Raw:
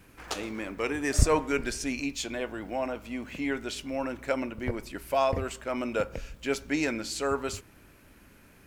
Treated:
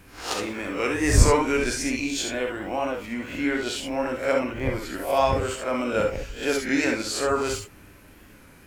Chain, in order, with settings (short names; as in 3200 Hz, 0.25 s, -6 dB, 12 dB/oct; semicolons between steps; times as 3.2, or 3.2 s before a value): spectral swells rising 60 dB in 0.41 s; non-linear reverb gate 90 ms rising, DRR 2.5 dB; record warp 33 1/3 rpm, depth 100 cents; gain +2.5 dB